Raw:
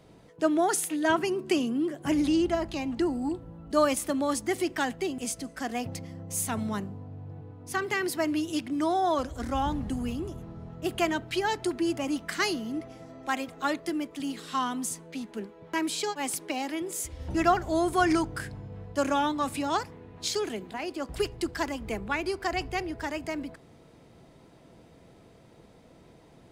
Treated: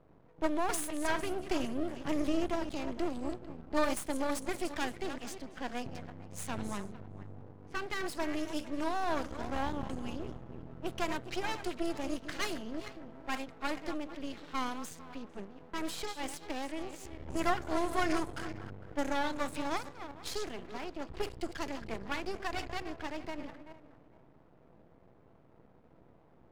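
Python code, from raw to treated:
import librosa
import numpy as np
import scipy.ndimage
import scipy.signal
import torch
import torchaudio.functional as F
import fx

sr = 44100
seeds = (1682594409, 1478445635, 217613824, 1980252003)

y = fx.reverse_delay_fb(x, sr, ms=226, feedback_pct=41, wet_db=-10.5)
y = fx.env_lowpass(y, sr, base_hz=1200.0, full_db=-24.0)
y = np.maximum(y, 0.0)
y = y * librosa.db_to_amplitude(-3.0)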